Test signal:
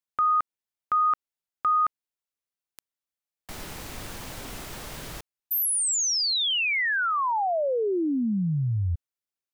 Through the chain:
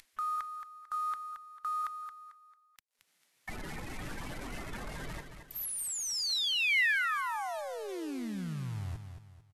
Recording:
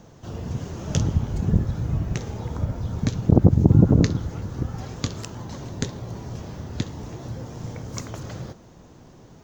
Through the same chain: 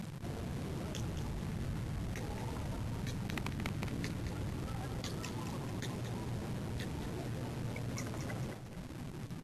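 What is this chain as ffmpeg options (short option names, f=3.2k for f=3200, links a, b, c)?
-filter_complex "[0:a]afftdn=nr=28:nf=-37,equalizer=f=79:t=o:w=1.2:g=-5.5,asplit=2[a][b];[b]acompressor=mode=upward:threshold=-29dB:ratio=2.5:attack=86:release=408:knee=2.83:detection=peak,volume=-2.5dB[c];[a][c]amix=inputs=2:normalize=0,aeval=exprs='(mod(1.06*val(0)+1,2)-1)/1.06':c=same,areverse,acompressor=threshold=-33dB:ratio=8:attack=0.38:release=21:knee=1:detection=rms,areverse,equalizer=f=500:t=o:w=1:g=-3,equalizer=f=2k:t=o:w=1:g=11,equalizer=f=4k:t=o:w=1:g=4,acrusher=bits=8:dc=4:mix=0:aa=0.000001,aecho=1:1:223|446|669|892:0.376|0.139|0.0515|0.019,volume=-4dB" -ar 32000 -c:a libvorbis -b:a 48k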